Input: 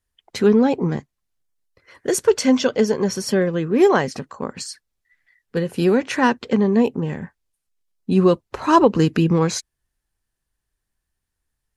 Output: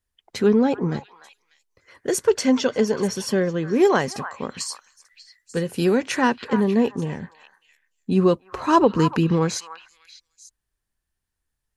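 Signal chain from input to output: 3.85–6.22 s: treble shelf 4 kHz +6.5 dB; repeats whose band climbs or falls 296 ms, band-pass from 1.2 kHz, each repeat 1.4 oct, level -8 dB; trim -2.5 dB

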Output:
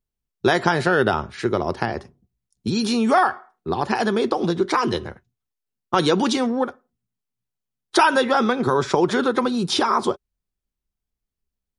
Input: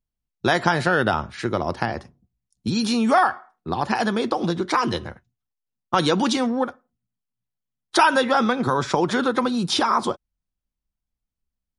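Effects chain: peaking EQ 400 Hz +8.5 dB 0.3 oct

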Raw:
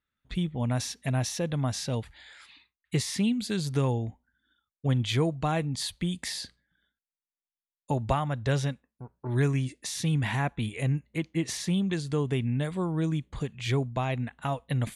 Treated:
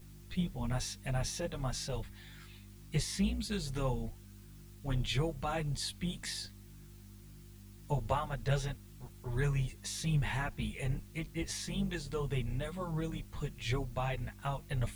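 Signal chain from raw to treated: octave divider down 2 oct, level -4 dB; in parallel at -7 dB: word length cut 8-bit, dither triangular; on the sum: mains buzz 50 Hz, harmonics 7, -41 dBFS -5 dB/octave; peaking EQ 280 Hz -9 dB 0.61 oct; three-phase chorus; trim -5.5 dB

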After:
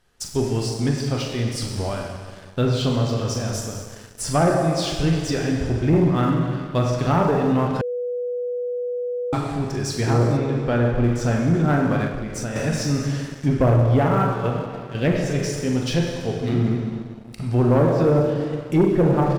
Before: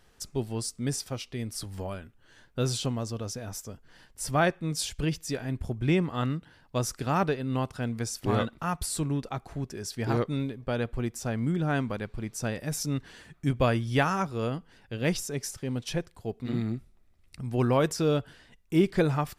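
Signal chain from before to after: doubling 42 ms -8 dB; low-pass that closes with the level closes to 860 Hz, closed at -20.5 dBFS; 14.21–14.95 s: level held to a coarse grid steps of 14 dB; plate-style reverb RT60 2.1 s, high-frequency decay 0.95×, DRR 0.5 dB; waveshaping leveller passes 2; 7.81–9.33 s: bleep 490 Hz -23 dBFS; 10.37–11.04 s: low-pass 3.8 kHz 6 dB/octave; 12.07–12.56 s: compression 6:1, threshold -25 dBFS, peak gain reduction 8 dB

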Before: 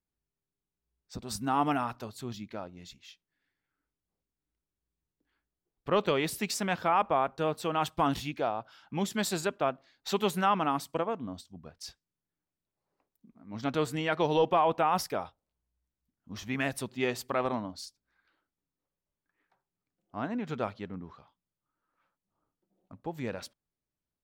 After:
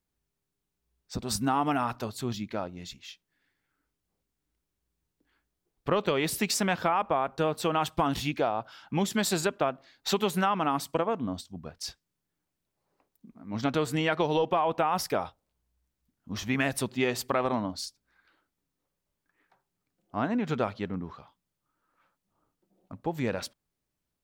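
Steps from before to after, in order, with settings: compression, threshold -29 dBFS, peak gain reduction 8.5 dB; trim +6.5 dB

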